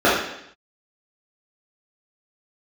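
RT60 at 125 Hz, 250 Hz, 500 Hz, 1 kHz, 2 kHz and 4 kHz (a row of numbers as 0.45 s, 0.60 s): 0.80 s, 0.80 s, 0.75 s, 0.75 s, 0.80 s, 0.80 s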